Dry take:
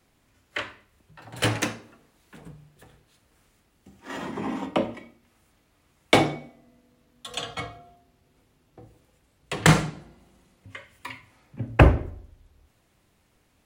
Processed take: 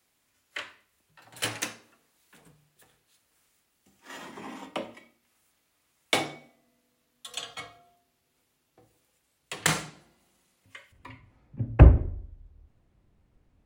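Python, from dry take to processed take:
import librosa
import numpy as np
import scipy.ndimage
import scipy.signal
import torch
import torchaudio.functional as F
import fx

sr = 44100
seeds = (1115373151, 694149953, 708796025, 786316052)

y = fx.tilt_eq(x, sr, slope=fx.steps((0.0, 2.5), (10.91, -3.0)))
y = y * 10.0 ** (-8.0 / 20.0)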